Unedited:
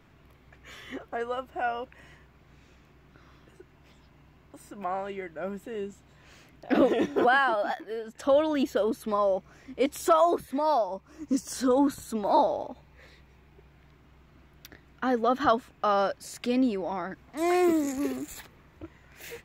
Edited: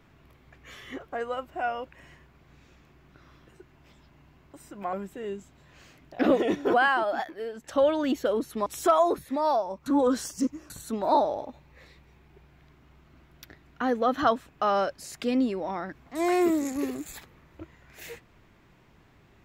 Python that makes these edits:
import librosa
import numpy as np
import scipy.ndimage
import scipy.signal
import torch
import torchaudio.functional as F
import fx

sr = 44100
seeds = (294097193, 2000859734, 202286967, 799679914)

y = fx.edit(x, sr, fx.cut(start_s=4.93, length_s=0.51),
    fx.cut(start_s=9.17, length_s=0.71),
    fx.reverse_span(start_s=11.08, length_s=0.84), tone=tone)